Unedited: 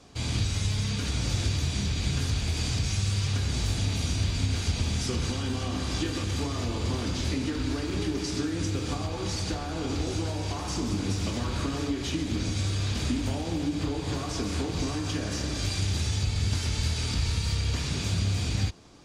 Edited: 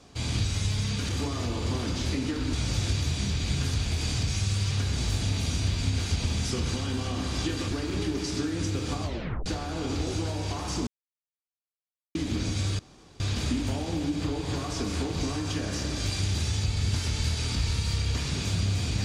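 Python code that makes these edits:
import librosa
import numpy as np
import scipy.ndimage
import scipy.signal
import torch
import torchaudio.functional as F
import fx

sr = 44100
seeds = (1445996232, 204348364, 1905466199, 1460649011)

y = fx.edit(x, sr, fx.move(start_s=6.28, length_s=1.44, to_s=1.09),
    fx.tape_stop(start_s=9.04, length_s=0.42),
    fx.silence(start_s=10.87, length_s=1.28),
    fx.insert_room_tone(at_s=12.79, length_s=0.41), tone=tone)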